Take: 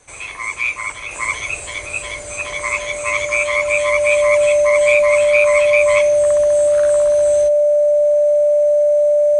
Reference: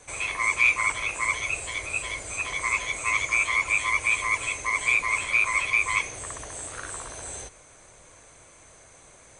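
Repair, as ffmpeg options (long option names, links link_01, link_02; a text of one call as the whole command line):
ffmpeg -i in.wav -af "bandreject=frequency=590:width=30,asetnsamples=nb_out_samples=441:pad=0,asendcmd='1.11 volume volume -5dB',volume=0dB" out.wav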